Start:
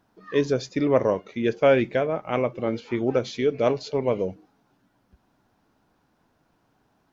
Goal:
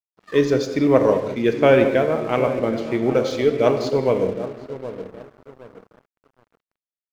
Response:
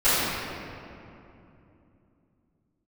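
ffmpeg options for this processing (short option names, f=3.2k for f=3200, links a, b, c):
-filter_complex "[0:a]asplit=2[a][b];[b]adelay=769,lowpass=f=940:p=1,volume=-10.5dB,asplit=2[c][d];[d]adelay=769,lowpass=f=940:p=1,volume=0.42,asplit=2[e][f];[f]adelay=769,lowpass=f=940:p=1,volume=0.42,asplit=2[g][h];[h]adelay=769,lowpass=f=940:p=1,volume=0.42[i];[a][c][e][g][i]amix=inputs=5:normalize=0,asplit=2[j][k];[1:a]atrim=start_sample=2205,afade=t=out:st=0.27:d=0.01,atrim=end_sample=12348[l];[k][l]afir=irnorm=-1:irlink=0,volume=-24dB[m];[j][m]amix=inputs=2:normalize=0,aeval=exprs='sgn(val(0))*max(abs(val(0))-0.00562,0)':c=same,volume=3.5dB"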